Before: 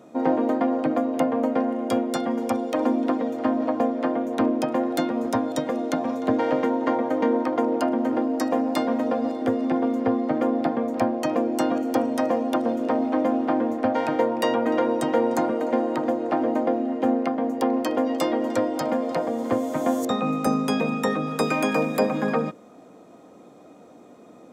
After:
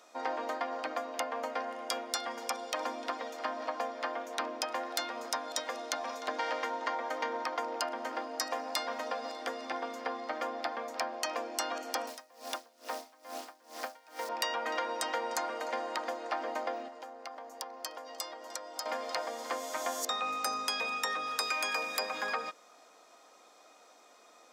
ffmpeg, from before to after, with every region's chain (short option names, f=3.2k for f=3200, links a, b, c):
-filter_complex "[0:a]asettb=1/sr,asplit=3[a][b][c];[a]atrim=end=12.074[d];[b]atrim=start=12.07:end=14.29,asetpts=PTS-STARTPTS,afade=t=in:d=0.004:c=qsin,afade=t=out:st=2.216:d=0.004:c=qsin,acrossover=split=220|620[e][f][g];[e]acompressor=threshold=-34dB:ratio=4[h];[f]acompressor=threshold=-27dB:ratio=4[i];[g]acompressor=threshold=-31dB:ratio=4[j];[h][i][j]amix=inputs=3:normalize=0,acrusher=bits=8:dc=4:mix=0:aa=0.000001,aeval=exprs='val(0)*pow(10,-26*(0.5-0.5*cos(2*PI*2.3*n/s))/20)':c=same[k];[c]atrim=start=14.286[l];[d][k]acrossfade=d=0.004:c1=hsin:c2=qsin[m];[m][l]acrossfade=d=0.004:c1=qsin:c2=hsin,asettb=1/sr,asplit=3[n][o][p];[n]atrim=end=16.884[q];[o]atrim=start=16.88:end=18.86,asetpts=PTS-STARTPTS,afade=t=in:d=0.004:c=qsin,afade=t=out:st=1.976:d=0.004:c=qsin,highpass=f=570:p=1,equalizer=f=2.4k:t=o:w=1.9:g=-9,acompressor=threshold=-30dB:ratio=6:attack=3.2:release=140:knee=1:detection=peak[r];[p]atrim=start=18.856[s];[q][r]acrossfade=d=0.004:c1=hsin:c2=qsin[t];[t][s]acrossfade=d=0.004:c1=qsin:c2=hsin,highpass=1.1k,equalizer=f=5.1k:w=2:g=8.5,acompressor=threshold=-29dB:ratio=6"